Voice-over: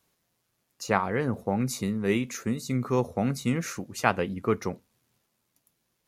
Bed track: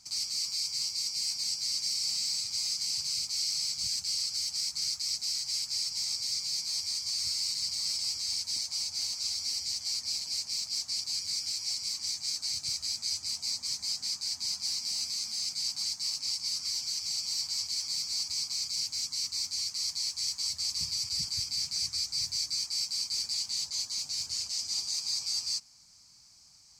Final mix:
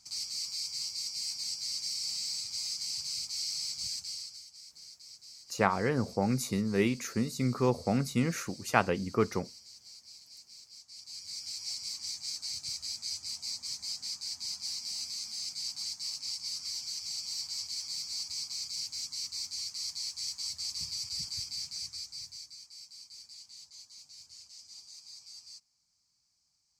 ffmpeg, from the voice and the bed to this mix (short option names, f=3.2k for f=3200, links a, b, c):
-filter_complex "[0:a]adelay=4700,volume=-2dB[a];[1:a]volume=10dB,afade=t=out:st=3.86:d=0.59:silence=0.188365,afade=t=in:st=10.89:d=0.79:silence=0.199526,afade=t=out:st=21.37:d=1.2:silence=0.223872[b];[a][b]amix=inputs=2:normalize=0"